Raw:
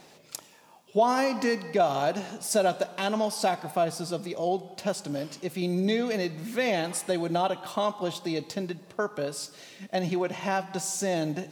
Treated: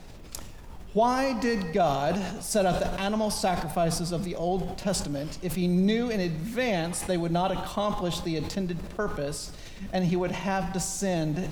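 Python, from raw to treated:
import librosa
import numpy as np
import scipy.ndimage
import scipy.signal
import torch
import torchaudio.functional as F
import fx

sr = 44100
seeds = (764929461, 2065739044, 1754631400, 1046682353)

y = fx.peak_eq(x, sr, hz=170.0, db=7.0, octaves=0.66)
y = fx.dmg_noise_colour(y, sr, seeds[0], colour='brown', level_db=-42.0)
y = fx.sustainer(y, sr, db_per_s=50.0)
y = y * librosa.db_to_amplitude(-1.5)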